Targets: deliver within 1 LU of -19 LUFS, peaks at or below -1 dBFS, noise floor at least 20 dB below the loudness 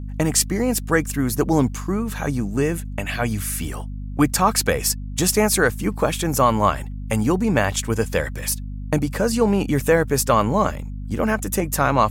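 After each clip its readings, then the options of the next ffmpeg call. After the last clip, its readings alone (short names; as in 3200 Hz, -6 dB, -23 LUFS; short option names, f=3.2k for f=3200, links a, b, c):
hum 50 Hz; harmonics up to 250 Hz; hum level -28 dBFS; loudness -21.0 LUFS; peak -4.0 dBFS; loudness target -19.0 LUFS
-> -af "bandreject=f=50:t=h:w=4,bandreject=f=100:t=h:w=4,bandreject=f=150:t=h:w=4,bandreject=f=200:t=h:w=4,bandreject=f=250:t=h:w=4"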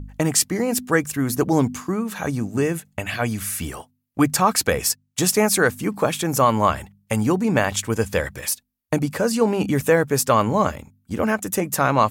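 hum none; loudness -21.0 LUFS; peak -4.5 dBFS; loudness target -19.0 LUFS
-> -af "volume=2dB"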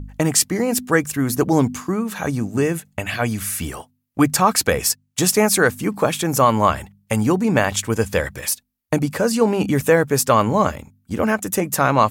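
loudness -19.0 LUFS; peak -2.5 dBFS; noise floor -67 dBFS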